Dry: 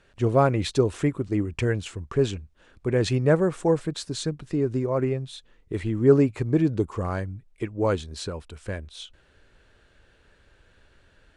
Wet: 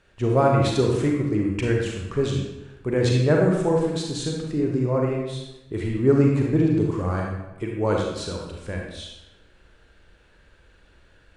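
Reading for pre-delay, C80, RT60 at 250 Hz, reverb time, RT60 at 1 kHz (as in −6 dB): 34 ms, 4.0 dB, 0.95 s, 1.0 s, 1.0 s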